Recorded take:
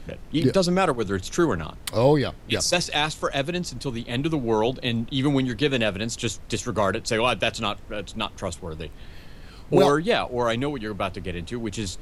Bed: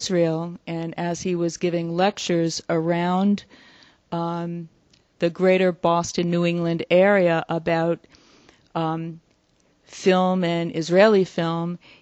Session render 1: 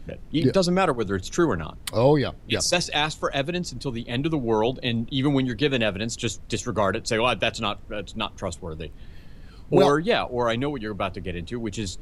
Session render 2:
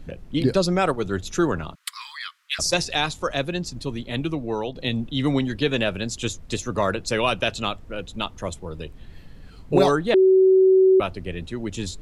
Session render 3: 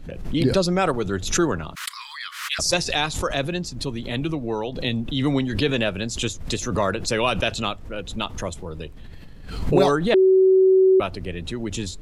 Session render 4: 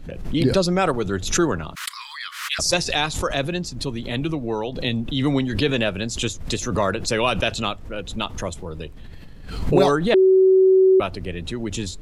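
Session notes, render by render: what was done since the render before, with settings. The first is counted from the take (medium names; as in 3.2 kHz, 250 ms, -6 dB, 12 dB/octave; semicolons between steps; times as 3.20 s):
noise reduction 7 dB, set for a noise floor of -42 dBFS
1.75–2.59 s: steep high-pass 1.1 kHz 72 dB/octave; 4.08–4.75 s: fade out, to -8 dB; 10.14–11.00 s: bleep 378 Hz -11.5 dBFS
swell ahead of each attack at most 71 dB/s
trim +1 dB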